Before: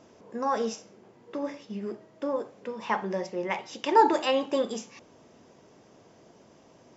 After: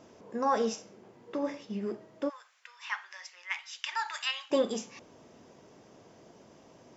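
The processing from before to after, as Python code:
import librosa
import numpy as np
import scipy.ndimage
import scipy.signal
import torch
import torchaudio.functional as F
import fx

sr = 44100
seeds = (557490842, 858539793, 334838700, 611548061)

y = fx.highpass(x, sr, hz=1400.0, slope=24, at=(2.28, 4.5), fade=0.02)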